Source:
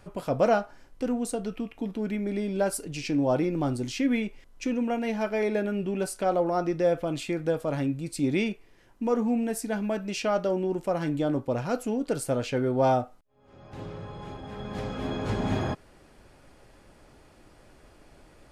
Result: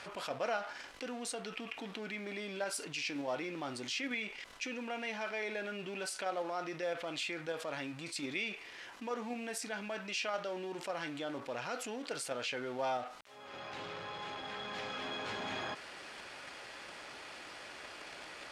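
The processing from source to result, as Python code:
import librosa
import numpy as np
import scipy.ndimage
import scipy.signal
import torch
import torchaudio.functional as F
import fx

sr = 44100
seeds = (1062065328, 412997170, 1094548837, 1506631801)

p1 = fx.law_mismatch(x, sr, coded='mu')
p2 = scipy.signal.sosfilt(scipy.signal.butter(2, 2900.0, 'lowpass', fs=sr, output='sos'), p1)
p3 = fx.level_steps(p2, sr, step_db=23)
p4 = p2 + (p3 * 10.0 ** (-2.5 / 20.0))
p5 = np.diff(p4, prepend=0.0)
p6 = fx.env_flatten(p5, sr, amount_pct=50)
y = p6 * 10.0 ** (2.5 / 20.0)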